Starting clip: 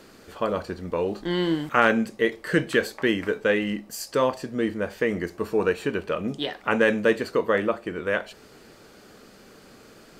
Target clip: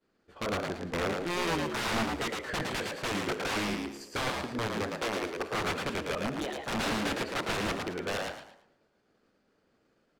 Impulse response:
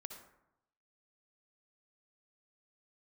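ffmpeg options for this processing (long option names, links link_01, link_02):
-filter_complex "[0:a]aeval=exprs='(mod(9.44*val(0)+1,2)-1)/9.44':channel_layout=same,aemphasis=mode=reproduction:type=50fm,agate=range=-33dB:threshold=-38dB:ratio=3:detection=peak,asettb=1/sr,asplit=3[link_01][link_02][link_03];[link_01]atrim=end=4.984[link_04];[link_02]atrim=start=4.98:end=5.53,asetpts=PTS-STARTPTS,afade=type=in:duration=0.004:curve=qsin,afade=type=out:start_time=0.546:duration=0.004:curve=qsin,lowshelf=frequency=220:width_type=q:width=1.5:gain=-8[link_05];[link_03]atrim=start=5.526[link_06];[link_04][link_05]acrossfade=duration=0.004:curve1=hsin:curve2=qsin[link_07];[link_07][link_06]acrossfade=duration=0.004:curve1=qsin:curve2=hsin,asplit=5[link_08][link_09][link_10][link_11][link_12];[link_09]adelay=111,afreqshift=69,volume=-3.5dB[link_13];[link_10]adelay=222,afreqshift=138,volume=-14dB[link_14];[link_11]adelay=333,afreqshift=207,volume=-24.4dB[link_15];[link_12]adelay=444,afreqshift=276,volume=-34.9dB[link_16];[link_08][link_13][link_14][link_15][link_16]amix=inputs=5:normalize=0,asplit=2[link_17][link_18];[1:a]atrim=start_sample=2205[link_19];[link_18][link_19]afir=irnorm=-1:irlink=0,volume=-2.5dB[link_20];[link_17][link_20]amix=inputs=2:normalize=0,volume=-8.5dB"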